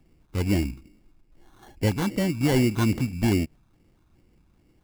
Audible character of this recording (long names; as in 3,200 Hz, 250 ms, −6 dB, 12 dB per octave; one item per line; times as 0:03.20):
phaser sweep stages 6, 2.4 Hz, lowest notch 510–1,400 Hz
aliases and images of a low sample rate 2,500 Hz, jitter 0%